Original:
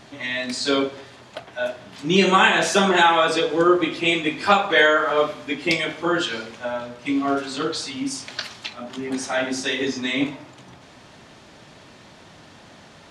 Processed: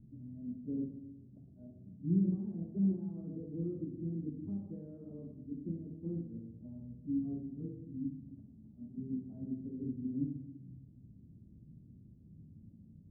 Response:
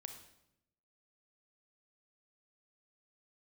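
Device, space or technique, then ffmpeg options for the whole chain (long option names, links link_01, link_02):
club heard from the street: -filter_complex "[0:a]alimiter=limit=-10dB:level=0:latency=1:release=84,lowpass=frequency=220:width=0.5412,lowpass=frequency=220:width=1.3066[link_01];[1:a]atrim=start_sample=2205[link_02];[link_01][link_02]afir=irnorm=-1:irlink=0,volume=1.5dB"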